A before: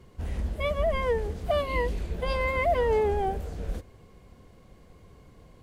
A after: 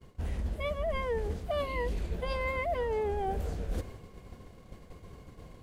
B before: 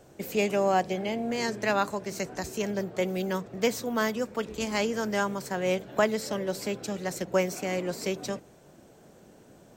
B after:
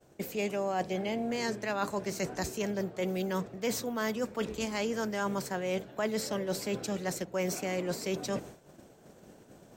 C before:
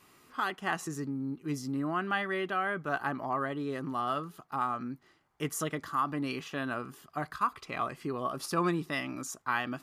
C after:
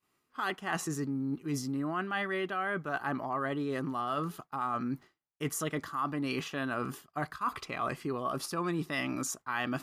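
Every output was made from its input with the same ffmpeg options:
-af "agate=range=0.0224:threshold=0.00501:ratio=3:detection=peak,areverse,acompressor=threshold=0.0112:ratio=5,areverse,volume=2.51"

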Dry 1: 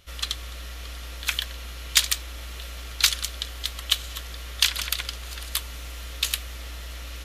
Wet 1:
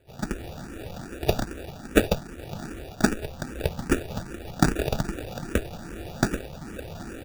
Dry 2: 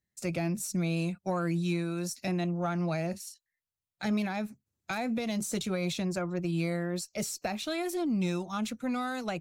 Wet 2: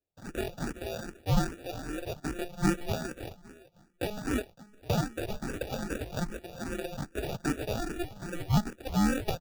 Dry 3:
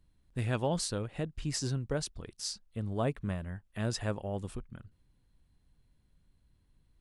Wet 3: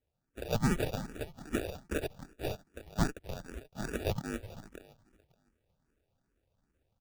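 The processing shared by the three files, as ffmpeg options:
-filter_complex "[0:a]highpass=f=1000:t=q:w=4.8,asplit=2[s0][s1];[s1]adelay=561,lowpass=f=4700:p=1,volume=0.1,asplit=2[s2][s3];[s3]adelay=561,lowpass=f=4700:p=1,volume=0.16[s4];[s2][s4]amix=inputs=2:normalize=0[s5];[s0][s5]amix=inputs=2:normalize=0,acrusher=samples=42:mix=1:aa=0.000001,dynaudnorm=f=120:g=5:m=2.24,asplit=2[s6][s7];[s7]afreqshift=2.5[s8];[s6][s8]amix=inputs=2:normalize=1,volume=0.891"

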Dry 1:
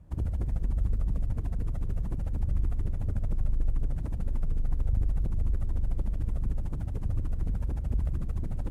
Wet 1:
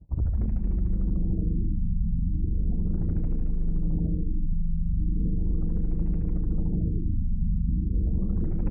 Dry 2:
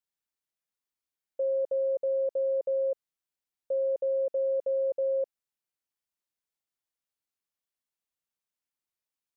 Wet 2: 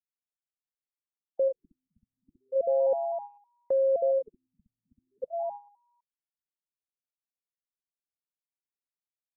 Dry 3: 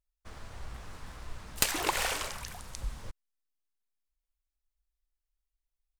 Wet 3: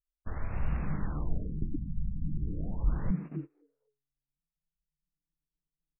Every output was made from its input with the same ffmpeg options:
-filter_complex "[0:a]lowshelf=f=250:g=8,asplit=4[s0][s1][s2][s3];[s1]adelay=255,afreqshift=140,volume=0.316[s4];[s2]adelay=510,afreqshift=280,volume=0.0977[s5];[s3]adelay=765,afreqshift=420,volume=0.0305[s6];[s0][s4][s5][s6]amix=inputs=4:normalize=0,acontrast=24,agate=range=0.0891:threshold=0.0126:ratio=16:detection=peak,areverse,acompressor=threshold=0.0891:ratio=12,areverse,afftfilt=real='re*lt(b*sr/1024,240*pow(2900/240,0.5+0.5*sin(2*PI*0.37*pts/sr)))':imag='im*lt(b*sr/1024,240*pow(2900/240,0.5+0.5*sin(2*PI*0.37*pts/sr)))':win_size=1024:overlap=0.75"

